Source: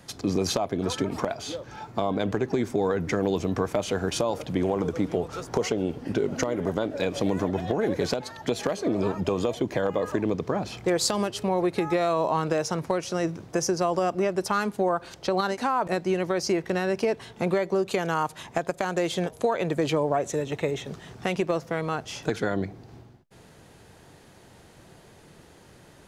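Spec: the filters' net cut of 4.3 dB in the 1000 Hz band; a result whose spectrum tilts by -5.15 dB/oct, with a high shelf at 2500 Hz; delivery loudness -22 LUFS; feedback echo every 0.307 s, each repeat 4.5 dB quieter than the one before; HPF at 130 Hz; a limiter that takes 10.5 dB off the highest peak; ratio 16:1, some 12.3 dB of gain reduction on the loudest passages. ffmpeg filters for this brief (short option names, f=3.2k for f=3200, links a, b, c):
-af "highpass=130,equalizer=f=1k:t=o:g=-5,highshelf=f=2.5k:g=-6,acompressor=threshold=-34dB:ratio=16,alimiter=level_in=5.5dB:limit=-24dB:level=0:latency=1,volume=-5.5dB,aecho=1:1:307|614|921|1228|1535|1842|2149|2456|2763:0.596|0.357|0.214|0.129|0.0772|0.0463|0.0278|0.0167|0.01,volume=17dB"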